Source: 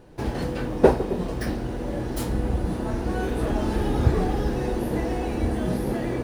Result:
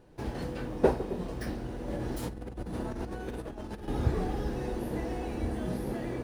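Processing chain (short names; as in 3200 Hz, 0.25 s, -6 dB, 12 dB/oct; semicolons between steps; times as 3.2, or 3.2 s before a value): 1.88–3.88 negative-ratio compressor -28 dBFS, ratio -0.5; gain -8 dB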